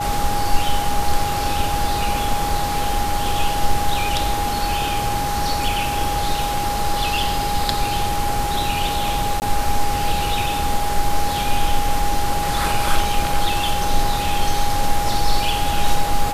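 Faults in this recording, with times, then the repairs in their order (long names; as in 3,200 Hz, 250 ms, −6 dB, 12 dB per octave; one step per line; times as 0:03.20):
whistle 820 Hz −22 dBFS
0:09.40–0:09.42: drop-out 19 ms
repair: notch filter 820 Hz, Q 30
repair the gap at 0:09.40, 19 ms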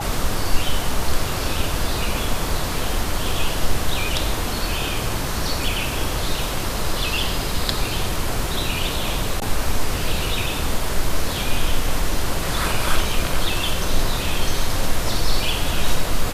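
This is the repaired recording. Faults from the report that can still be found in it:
none of them is left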